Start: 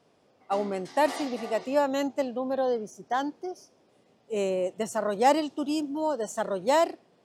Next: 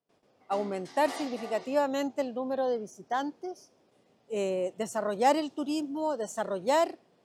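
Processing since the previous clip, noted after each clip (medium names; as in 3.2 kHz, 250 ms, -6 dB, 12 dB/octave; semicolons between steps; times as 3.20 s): gate with hold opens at -55 dBFS; trim -2.5 dB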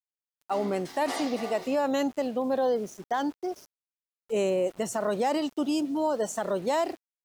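peak limiter -24.5 dBFS, peak gain reduction 11 dB; small samples zeroed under -52 dBFS; trim +5.5 dB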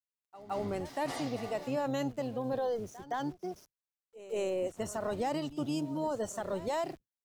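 octave divider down 1 oct, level -6 dB; pre-echo 167 ms -16 dB; trim -7 dB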